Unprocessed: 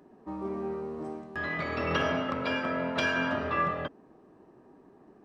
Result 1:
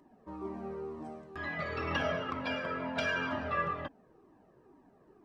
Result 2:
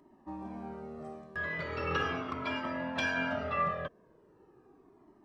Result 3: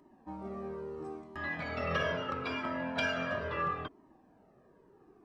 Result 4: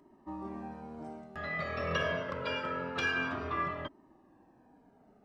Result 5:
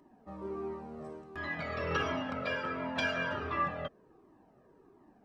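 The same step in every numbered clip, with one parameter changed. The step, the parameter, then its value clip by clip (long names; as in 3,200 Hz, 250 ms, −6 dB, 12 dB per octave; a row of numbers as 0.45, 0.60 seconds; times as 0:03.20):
flanger whose copies keep moving one way, speed: 2.1, 0.39, 0.75, 0.26, 1.4 Hertz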